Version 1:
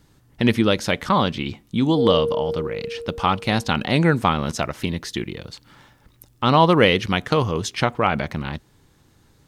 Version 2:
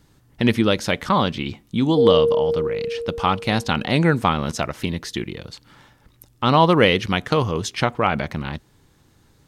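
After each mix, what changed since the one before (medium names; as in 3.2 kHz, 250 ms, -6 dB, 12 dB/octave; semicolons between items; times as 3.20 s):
background: add tilt EQ -4.5 dB/octave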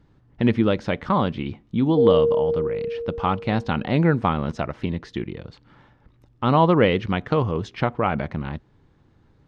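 master: add tape spacing loss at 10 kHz 30 dB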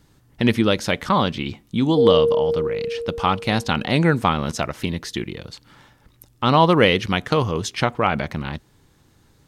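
master: remove tape spacing loss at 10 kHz 30 dB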